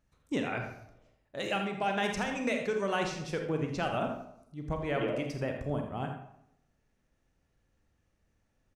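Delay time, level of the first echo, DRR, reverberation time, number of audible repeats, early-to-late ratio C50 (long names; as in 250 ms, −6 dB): 83 ms, −11.0 dB, 3.0 dB, 0.75 s, 1, 5.0 dB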